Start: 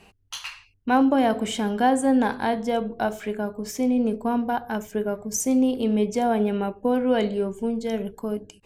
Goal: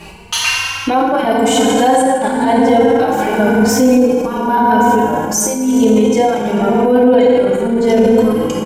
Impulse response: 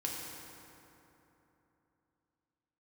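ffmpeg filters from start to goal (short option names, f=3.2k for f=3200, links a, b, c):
-filter_complex "[0:a]asettb=1/sr,asplit=3[a][b][c];[a]atrim=end=1.314[d];[b]atrim=start=1.31:end=1.99,asetpts=PTS-STARTPTS,afade=t=in:d=0.004:c=qsin,afade=t=out:st=0.676:d=0.004:c=qsin,highshelf=f=4.1k:g=9[e];[c]atrim=start=1.986[f];[d][e]acrossfade=d=0.004:c1=hsin:c2=qsin[g];[g][f]acrossfade=d=0.004:c1=qsin:c2=hsin[h];[1:a]atrim=start_sample=2205[i];[h][i]afir=irnorm=-1:irlink=0,alimiter=level_in=24.5dB:limit=-1dB:release=50:level=0:latency=1,asplit=2[j][k];[k]adelay=3.1,afreqshift=0.92[l];[j][l]amix=inputs=2:normalize=1,volume=-1dB"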